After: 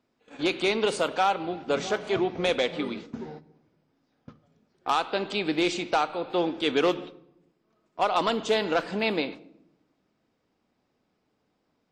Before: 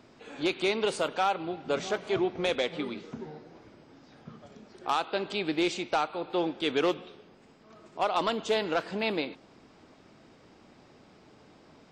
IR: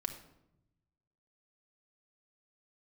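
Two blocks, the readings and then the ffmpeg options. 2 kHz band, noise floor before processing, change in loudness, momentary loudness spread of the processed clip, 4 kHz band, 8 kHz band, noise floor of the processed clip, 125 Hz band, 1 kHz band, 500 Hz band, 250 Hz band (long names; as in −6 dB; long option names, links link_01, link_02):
+3.5 dB, −58 dBFS, +3.0 dB, 10 LU, +3.0 dB, +3.0 dB, −75 dBFS, +3.0 dB, +3.5 dB, +3.0 dB, +3.0 dB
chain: -filter_complex "[0:a]agate=range=-21dB:threshold=-43dB:ratio=16:detection=peak,asplit=2[link_01][link_02];[1:a]atrim=start_sample=2205[link_03];[link_02][link_03]afir=irnorm=-1:irlink=0,volume=-6.5dB[link_04];[link_01][link_04]amix=inputs=2:normalize=0"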